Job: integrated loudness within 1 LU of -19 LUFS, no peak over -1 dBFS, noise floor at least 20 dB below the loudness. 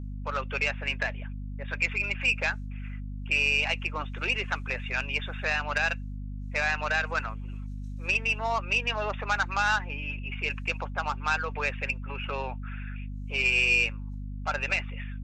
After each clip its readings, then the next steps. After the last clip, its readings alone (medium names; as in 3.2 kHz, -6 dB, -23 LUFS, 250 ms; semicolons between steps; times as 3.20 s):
hum 50 Hz; highest harmonic 250 Hz; hum level -34 dBFS; loudness -28.0 LUFS; peak level -12.0 dBFS; loudness target -19.0 LUFS
-> hum notches 50/100/150/200/250 Hz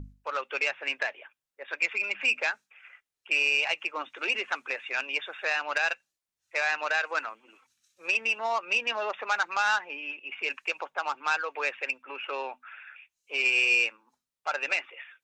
hum not found; loudness -28.0 LUFS; peak level -12.5 dBFS; loudness target -19.0 LUFS
-> trim +9 dB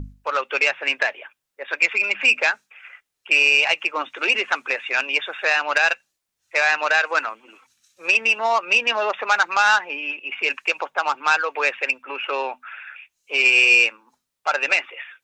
loudness -19.0 LUFS; peak level -3.5 dBFS; noise floor -80 dBFS